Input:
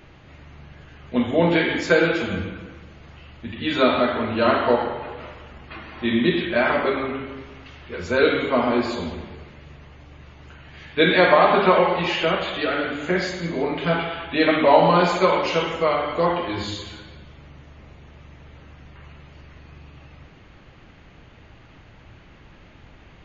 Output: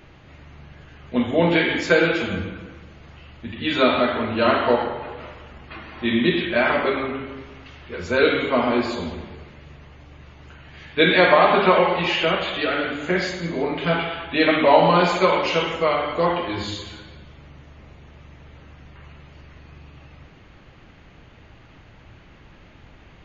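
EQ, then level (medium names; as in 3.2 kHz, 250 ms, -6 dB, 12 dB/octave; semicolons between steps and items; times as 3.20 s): dynamic bell 2.7 kHz, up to +3 dB, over -34 dBFS, Q 1.4; 0.0 dB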